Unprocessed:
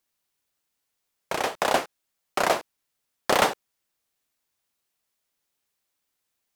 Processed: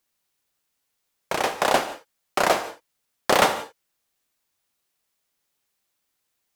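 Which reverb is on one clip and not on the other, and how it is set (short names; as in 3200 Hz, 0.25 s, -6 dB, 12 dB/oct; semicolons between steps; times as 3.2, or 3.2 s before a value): non-linear reverb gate 0.2 s flat, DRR 11 dB; gain +2.5 dB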